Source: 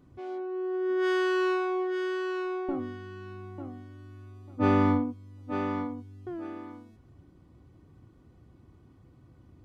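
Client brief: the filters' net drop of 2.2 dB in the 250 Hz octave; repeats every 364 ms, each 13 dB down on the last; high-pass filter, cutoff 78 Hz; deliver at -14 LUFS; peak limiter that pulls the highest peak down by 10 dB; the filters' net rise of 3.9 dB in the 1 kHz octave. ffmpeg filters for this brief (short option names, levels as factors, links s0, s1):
-af "highpass=78,equalizer=f=250:t=o:g=-3.5,equalizer=f=1000:t=o:g=5,alimiter=limit=0.0841:level=0:latency=1,aecho=1:1:364|728|1092:0.224|0.0493|0.0108,volume=8.41"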